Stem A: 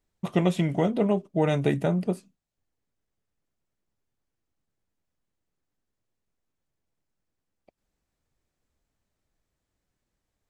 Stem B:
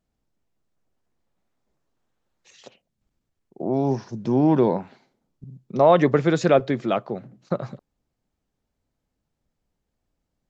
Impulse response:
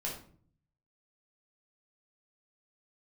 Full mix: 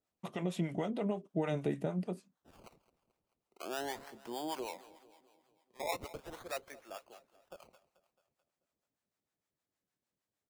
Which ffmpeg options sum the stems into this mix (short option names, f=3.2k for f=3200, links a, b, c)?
-filter_complex "[0:a]highpass=150,alimiter=limit=-16dB:level=0:latency=1:release=107,volume=-4.5dB[a];[1:a]highpass=730,acrusher=samples=21:mix=1:aa=0.000001:lfo=1:lforange=21:lforate=0.4,volume=-3.5dB,afade=t=out:st=4.21:d=0.59:silence=0.251189,asplit=2[b][c];[c]volume=-17.5dB,aecho=0:1:218|436|654|872|1090|1308|1526|1744:1|0.53|0.281|0.149|0.0789|0.0418|0.0222|0.0117[d];[a][b][d]amix=inputs=3:normalize=0,acrossover=split=590[e][f];[e]aeval=exprs='val(0)*(1-0.7/2+0.7/2*cos(2*PI*6.5*n/s))':c=same[g];[f]aeval=exprs='val(0)*(1-0.7/2-0.7/2*cos(2*PI*6.5*n/s))':c=same[h];[g][h]amix=inputs=2:normalize=0"